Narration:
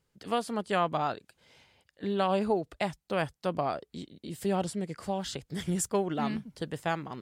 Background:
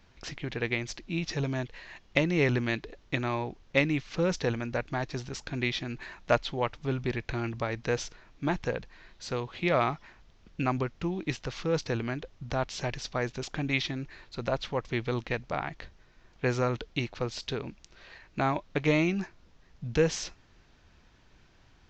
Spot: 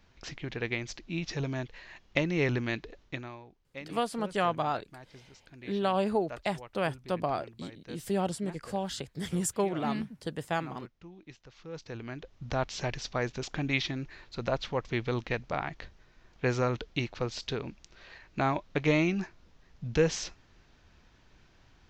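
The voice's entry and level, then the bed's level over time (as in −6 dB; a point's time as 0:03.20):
3.65 s, −0.5 dB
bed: 0:03.02 −2.5 dB
0:03.43 −18 dB
0:11.50 −18 dB
0:12.48 −0.5 dB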